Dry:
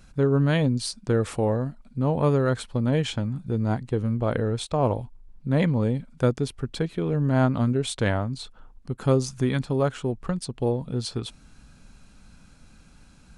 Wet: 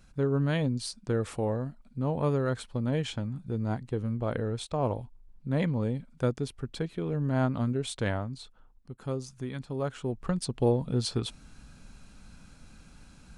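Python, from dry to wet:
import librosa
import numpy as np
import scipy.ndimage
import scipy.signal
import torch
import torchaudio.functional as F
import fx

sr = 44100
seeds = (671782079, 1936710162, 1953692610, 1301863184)

y = fx.gain(x, sr, db=fx.line((8.14, -6.0), (8.91, -12.5), (9.53, -12.5), (10.46, 0.0)))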